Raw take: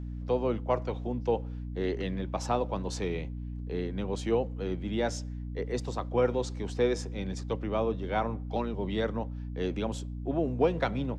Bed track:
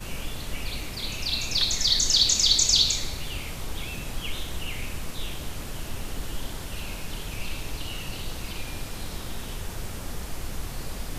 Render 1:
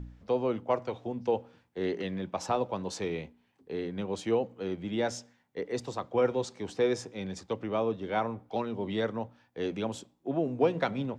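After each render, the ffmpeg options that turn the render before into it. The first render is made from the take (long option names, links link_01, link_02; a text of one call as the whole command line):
ffmpeg -i in.wav -af "bandreject=frequency=60:width_type=h:width=4,bandreject=frequency=120:width_type=h:width=4,bandreject=frequency=180:width_type=h:width=4,bandreject=frequency=240:width_type=h:width=4,bandreject=frequency=300:width_type=h:width=4" out.wav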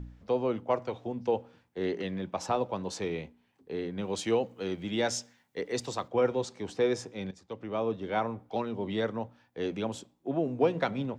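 ffmpeg -i in.wav -filter_complex "[0:a]asettb=1/sr,asplit=3[link_01][link_02][link_03];[link_01]atrim=end=4.034[link_04];[link_02]atrim=start=4.03:end=6.08,asetpts=PTS-STARTPTS,afade=type=in:duration=0.004:curve=qsin,afade=type=out:start_time=2.046:duration=0.004:curve=qsin,highshelf=frequency=2100:gain=8[link_05];[link_03]atrim=start=6.076[link_06];[link_04][link_05]acrossfade=duration=0.004:curve1=hsin:curve2=qsin[link_07];[link_07][link_06]acrossfade=duration=0.004:curve1=qsin:curve2=hsin,asplit=2[link_08][link_09];[link_08]atrim=end=7.31,asetpts=PTS-STARTPTS,afade=type=out:start_time=7.306:duration=0.004:curve=hsin:silence=0.158489[link_10];[link_09]atrim=start=7.31,asetpts=PTS-STARTPTS,afade=type=in:duration=0.62:silence=0.158489[link_11];[link_10][link_11]concat=n=2:v=0:a=1" out.wav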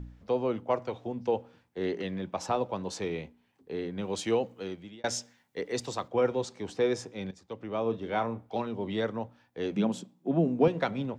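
ffmpeg -i in.wav -filter_complex "[0:a]asettb=1/sr,asplit=3[link_01][link_02][link_03];[link_01]atrim=end=7.824[link_04];[link_02]atrim=start=7.82:end=8.67,asetpts=PTS-STARTPTS,afade=type=in:duration=0.004:curve=qsin,afade=type=out:start_time=0.846:duration=0.004:curve=qsin,asplit=2[link_05][link_06];[link_06]adelay=35,volume=-12dB[link_07];[link_05][link_07]amix=inputs=2:normalize=0,atrim=end_sample=37485[link_08];[link_03]atrim=start=8.666[link_09];[link_04][link_08]acrossfade=duration=0.004:curve1=hsin:curve2=qsin[link_10];[link_10][link_09]acrossfade=duration=0.004:curve1=qsin:curve2=hsin,asettb=1/sr,asplit=3[link_11][link_12][link_13];[link_11]atrim=end=9.764[link_14];[link_12]atrim=start=9.76:end=10.68,asetpts=PTS-STARTPTS,afade=type=in:duration=0.004:curve=qsin,afade=type=out:start_time=0.916:duration=0.004:curve=qsin,highpass=frequency=180:width_type=q:width=4.9[link_15];[link_13]atrim=start=10.676[link_16];[link_14][link_15]acrossfade=duration=0.004:curve1=hsin:curve2=qsin[link_17];[link_17][link_16]acrossfade=duration=0.004:curve1=qsin:curve2=hsin,asplit=2[link_18][link_19];[link_18]atrim=end=5.04,asetpts=PTS-STARTPTS,afade=type=out:start_time=4.49:duration=0.55[link_20];[link_19]atrim=start=5.04,asetpts=PTS-STARTPTS,afade=type=in:duration=0.004:curve=hsin[link_21];[link_20][link_21]concat=n=2:v=0:a=1" out.wav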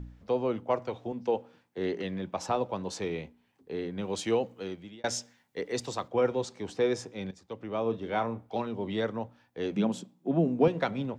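ffmpeg -i in.wav -filter_complex "[0:a]asettb=1/sr,asplit=3[link_01][link_02][link_03];[link_01]atrim=end=1.124[link_04];[link_02]atrim=start=1.12:end=1.78,asetpts=PTS-STARTPTS,afade=type=in:duration=0.004:curve=qsin,afade=type=out:start_time=0.656:duration=0.004:curve=qsin,highpass=150[link_05];[link_03]atrim=start=1.776[link_06];[link_04][link_05]acrossfade=duration=0.004:curve1=hsin:curve2=qsin[link_07];[link_07][link_06]acrossfade=duration=0.004:curve1=qsin:curve2=hsin" out.wav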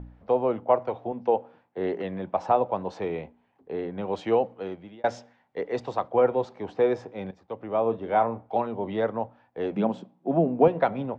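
ffmpeg -i in.wav -af "lowpass=2600,equalizer=frequency=730:width=1.1:gain=9.5" out.wav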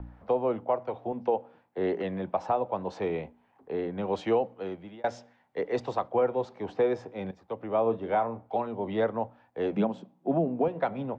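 ffmpeg -i in.wav -filter_complex "[0:a]acrossover=split=230|800|1500[link_01][link_02][link_03][link_04];[link_03]acompressor=mode=upward:threshold=-54dB:ratio=2.5[link_05];[link_01][link_02][link_05][link_04]amix=inputs=4:normalize=0,alimiter=limit=-16dB:level=0:latency=1:release=466" out.wav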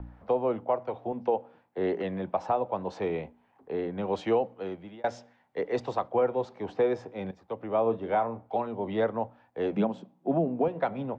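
ffmpeg -i in.wav -af anull out.wav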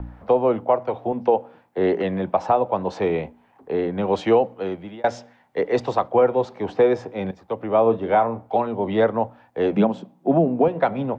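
ffmpeg -i in.wav -af "volume=8.5dB" out.wav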